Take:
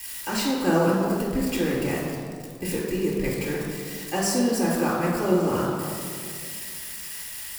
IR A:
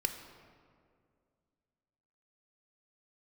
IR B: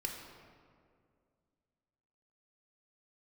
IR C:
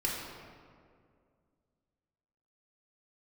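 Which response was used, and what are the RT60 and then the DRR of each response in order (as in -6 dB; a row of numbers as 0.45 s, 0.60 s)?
C; 2.2 s, 2.2 s, 2.2 s; 6.0 dB, 0.5 dB, -4.5 dB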